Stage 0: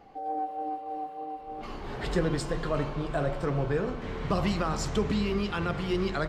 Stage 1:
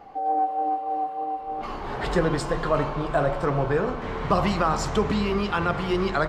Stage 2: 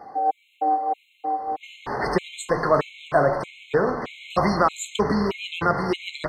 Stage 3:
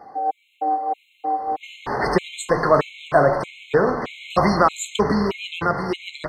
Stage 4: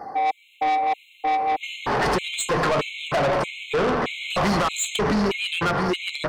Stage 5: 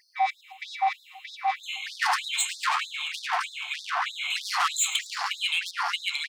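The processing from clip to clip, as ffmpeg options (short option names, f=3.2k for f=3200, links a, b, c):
-af "equalizer=f=960:w=0.81:g=7.5,volume=2.5dB"
-af "highpass=f=200:p=1,afftfilt=real='re*gt(sin(2*PI*1.6*pts/sr)*(1-2*mod(floor(b*sr/1024/2100),2)),0)':imag='im*gt(sin(2*PI*1.6*pts/sr)*(1-2*mod(floor(b*sr/1024/2100),2)),0)':win_size=1024:overlap=0.75,volume=5dB"
-af "dynaudnorm=f=220:g=11:m=11.5dB,volume=-1dB"
-af "alimiter=limit=-8.5dB:level=0:latency=1:release=81,asoftclip=type=tanh:threshold=-25.5dB,volume=7dB"
-af "aecho=1:1:108|216|324|432|540:0.133|0.0787|0.0464|0.0274|0.0162,afftfilt=real='re*gte(b*sr/1024,670*pow(3600/670,0.5+0.5*sin(2*PI*3.2*pts/sr)))':imag='im*gte(b*sr/1024,670*pow(3600/670,0.5+0.5*sin(2*PI*3.2*pts/sr)))':win_size=1024:overlap=0.75,volume=1dB"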